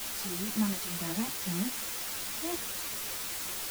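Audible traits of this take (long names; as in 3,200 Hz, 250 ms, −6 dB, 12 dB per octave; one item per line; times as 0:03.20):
tremolo triangle 2 Hz, depth 75%
a quantiser's noise floor 6 bits, dither triangular
a shimmering, thickened sound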